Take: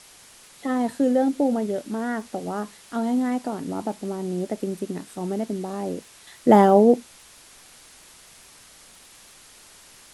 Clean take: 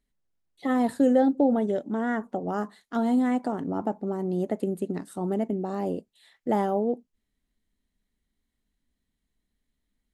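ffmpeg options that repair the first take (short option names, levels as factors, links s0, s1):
-af "adeclick=t=4,afwtdn=0.0045,asetnsamples=n=441:p=0,asendcmd='6.27 volume volume -11dB',volume=1"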